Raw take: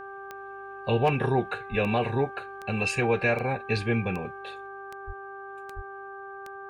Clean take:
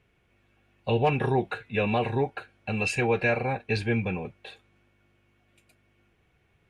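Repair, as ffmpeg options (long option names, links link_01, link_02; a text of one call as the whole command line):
ffmpeg -i in.wav -filter_complex "[0:a]adeclick=threshold=4,bandreject=frequency=393.4:width_type=h:width=4,bandreject=frequency=786.8:width_type=h:width=4,bandreject=frequency=1180.2:width_type=h:width=4,bandreject=frequency=1573.6:width_type=h:width=4,asplit=3[link_01][link_02][link_03];[link_01]afade=type=out:start_time=1.7:duration=0.02[link_04];[link_02]highpass=frequency=140:width=0.5412,highpass=frequency=140:width=1.3066,afade=type=in:start_time=1.7:duration=0.02,afade=type=out:start_time=1.82:duration=0.02[link_05];[link_03]afade=type=in:start_time=1.82:duration=0.02[link_06];[link_04][link_05][link_06]amix=inputs=3:normalize=0,asplit=3[link_07][link_08][link_09];[link_07]afade=type=out:start_time=5.06:duration=0.02[link_10];[link_08]highpass=frequency=140:width=0.5412,highpass=frequency=140:width=1.3066,afade=type=in:start_time=5.06:duration=0.02,afade=type=out:start_time=5.18:duration=0.02[link_11];[link_09]afade=type=in:start_time=5.18:duration=0.02[link_12];[link_10][link_11][link_12]amix=inputs=3:normalize=0,asplit=3[link_13][link_14][link_15];[link_13]afade=type=out:start_time=5.75:duration=0.02[link_16];[link_14]highpass=frequency=140:width=0.5412,highpass=frequency=140:width=1.3066,afade=type=in:start_time=5.75:duration=0.02,afade=type=out:start_time=5.87:duration=0.02[link_17];[link_15]afade=type=in:start_time=5.87:duration=0.02[link_18];[link_16][link_17][link_18]amix=inputs=3:normalize=0,asetnsamples=nb_out_samples=441:pad=0,asendcmd='4.67 volume volume 3.5dB',volume=0dB" out.wav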